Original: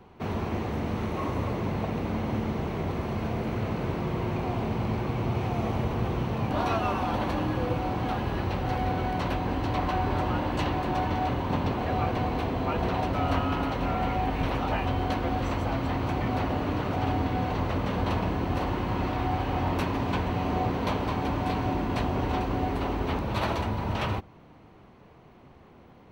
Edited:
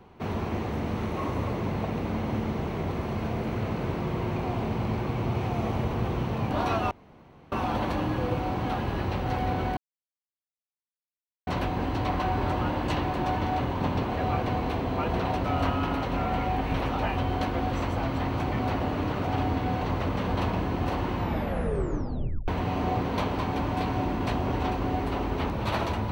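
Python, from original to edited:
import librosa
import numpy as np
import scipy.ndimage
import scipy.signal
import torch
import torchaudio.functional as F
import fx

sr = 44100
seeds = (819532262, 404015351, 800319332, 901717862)

y = fx.edit(x, sr, fx.insert_room_tone(at_s=6.91, length_s=0.61),
    fx.insert_silence(at_s=9.16, length_s=1.7),
    fx.tape_stop(start_s=18.86, length_s=1.31), tone=tone)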